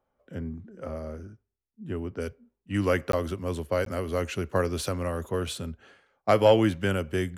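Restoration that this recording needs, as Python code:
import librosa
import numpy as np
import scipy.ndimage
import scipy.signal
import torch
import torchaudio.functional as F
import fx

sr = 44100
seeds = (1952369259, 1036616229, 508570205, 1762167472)

y = fx.fix_interpolate(x, sr, at_s=(3.12, 3.85), length_ms=13.0)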